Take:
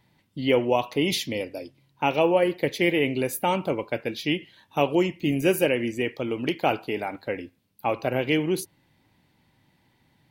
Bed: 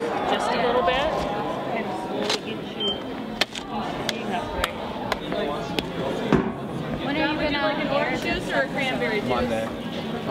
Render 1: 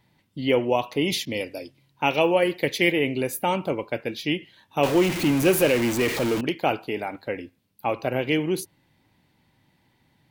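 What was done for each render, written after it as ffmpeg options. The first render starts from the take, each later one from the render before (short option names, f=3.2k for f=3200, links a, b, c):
-filter_complex "[0:a]asettb=1/sr,asplit=3[a][b][c];[a]atrim=end=1.254[d];[b]atrim=start=1.25:end=2.92,asetpts=PTS-STARTPTS,afade=t=in:d=0.004:c=qsin,afade=t=out:st=1.666:d=0.004:c=qsin,adynamicequalizer=threshold=0.0126:dfrequency=1500:dqfactor=0.7:tfrequency=1500:tqfactor=0.7:attack=5:release=100:ratio=0.375:range=2.5:mode=boostabove:tftype=highshelf[e];[c]atrim=start=2.916[f];[d][e]acrossfade=d=0.004:c1=hsin:c2=qsin[g];[g][f]acrossfade=d=0.004:c1=qsin:c2=hsin,asettb=1/sr,asplit=3[h][i][j];[h]atrim=end=4.834[k];[i]atrim=start=4.83:end=6.41,asetpts=PTS-STARTPTS,afade=t=in:d=0.004:c=qsin,afade=t=out:st=1.576:d=0.004:c=qsin,aeval=exprs='val(0)+0.5*0.0708*sgn(val(0))':c=same[l];[j]atrim=start=6.406[m];[k][l]acrossfade=d=0.004:c1=hsin:c2=qsin[n];[n][m]acrossfade=d=0.004:c1=qsin:c2=hsin"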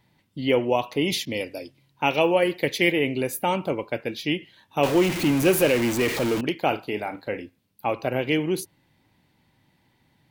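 -filter_complex "[0:a]asettb=1/sr,asplit=3[a][b][c];[a]atrim=end=6.684[d];[b]atrim=start=6.68:end=7.43,asetpts=PTS-STARTPTS,afade=t=in:d=0.004:c=qsin,afade=t=out:st=0.746:d=0.004:c=qsin,asplit=2[e][f];[f]adelay=38,volume=-11dB[g];[e][g]amix=inputs=2:normalize=0,atrim=end_sample=33075[h];[c]atrim=start=7.426[i];[d][h]acrossfade=d=0.004:c1=hsin:c2=qsin[j];[j][i]acrossfade=d=0.004:c1=qsin:c2=hsin"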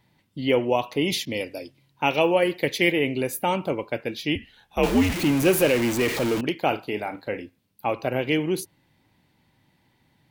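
-filter_complex "[0:a]asettb=1/sr,asplit=3[a][b][c];[a]atrim=end=4.354[d];[b]atrim=start=4.35:end=5.14,asetpts=PTS-STARTPTS,afade=t=in:d=0.004:c=qsin,afade=t=out:st=0.786:d=0.004:c=qsin,afreqshift=-95[e];[c]atrim=start=5.136[f];[d][e]acrossfade=d=0.004:c1=hsin:c2=qsin[g];[g][f]acrossfade=d=0.004:c1=qsin:c2=hsin"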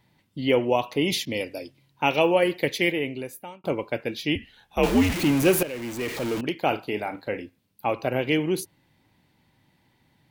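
-filter_complex "[0:a]asplit=3[a][b][c];[a]atrim=end=3.64,asetpts=PTS-STARTPTS,afade=t=out:st=2.6:d=1.04[d];[b]atrim=start=3.64:end=5.63,asetpts=PTS-STARTPTS,afade=t=in:d=0.004:c=hsin,afade=t=out:st=1.986:d=0.004:c=hsin:silence=0.158489[e];[c]atrim=start=5.63,asetpts=PTS-STARTPTS,afade=t=in:d=1.14:silence=0.158489[f];[d][e][f]concat=n=3:v=0:a=1"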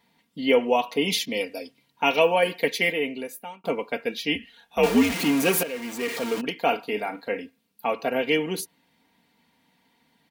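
-af "highpass=f=270:p=1,aecho=1:1:4.3:0.74"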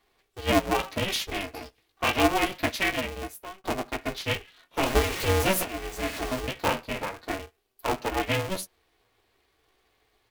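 -af "flanger=delay=9.1:depth=7.5:regen=8:speed=0.25:shape=sinusoidal,aeval=exprs='val(0)*sgn(sin(2*PI*190*n/s))':c=same"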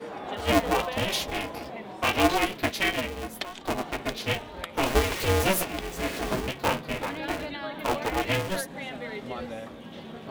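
-filter_complex "[1:a]volume=-12dB[a];[0:a][a]amix=inputs=2:normalize=0"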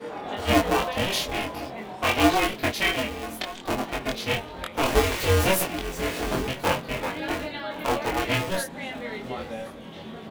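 -filter_complex "[0:a]asplit=2[a][b];[b]adelay=23,volume=-2dB[c];[a][c]amix=inputs=2:normalize=0,aecho=1:1:1068:0.0668"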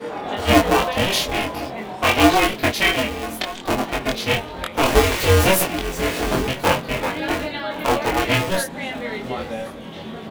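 -af "volume=6dB,alimiter=limit=-3dB:level=0:latency=1"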